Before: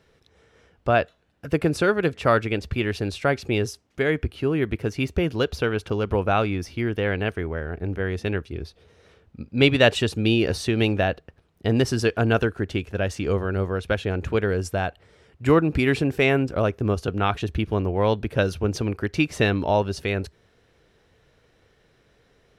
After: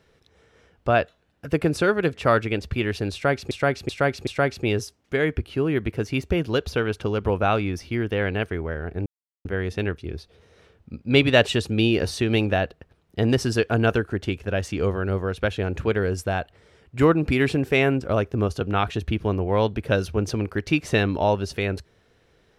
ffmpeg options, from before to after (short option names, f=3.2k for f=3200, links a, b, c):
-filter_complex "[0:a]asplit=5[a][b][c][d][e];[a]atrim=end=3.512[f];[b]atrim=start=3.128:end=3.512[g];[c]atrim=start=3.128:end=3.512[h];[d]atrim=start=3.128:end=7.92,asetpts=PTS-STARTPTS,afade=t=out:st=4.788:d=0.004:c=hsin,apad=pad_dur=0.39[i];[e]atrim=start=7.92,asetpts=PTS-STARTPTS,afade=t=in:d=0.004:c=hsin[j];[f][g]acrossfade=d=0.004:c1=hsin:c2=hsin[k];[k][h]acrossfade=d=0.004:c1=hsin:c2=hsin[l];[i][j]concat=n=2:v=0:a=1[m];[l][m]acrossfade=d=0.004:c1=hsin:c2=hsin"